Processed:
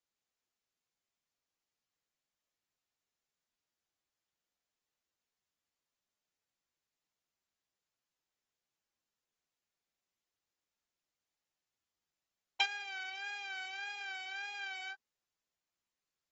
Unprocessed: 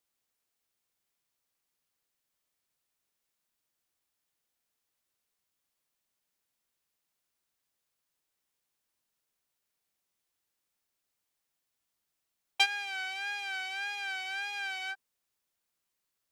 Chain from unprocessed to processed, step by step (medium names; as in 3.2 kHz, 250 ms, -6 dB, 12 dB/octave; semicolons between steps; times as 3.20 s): trim -7 dB; AAC 24 kbps 44.1 kHz